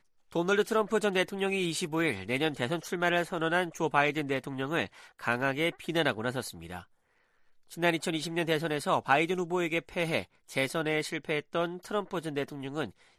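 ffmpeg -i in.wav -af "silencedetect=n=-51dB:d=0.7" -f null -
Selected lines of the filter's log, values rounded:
silence_start: 6.84
silence_end: 7.70 | silence_duration: 0.86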